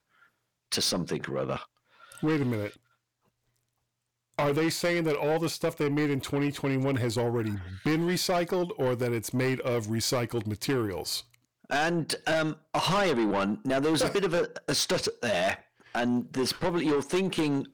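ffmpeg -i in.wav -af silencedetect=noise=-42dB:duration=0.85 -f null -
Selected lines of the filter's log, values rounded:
silence_start: 2.74
silence_end: 4.39 | silence_duration: 1.65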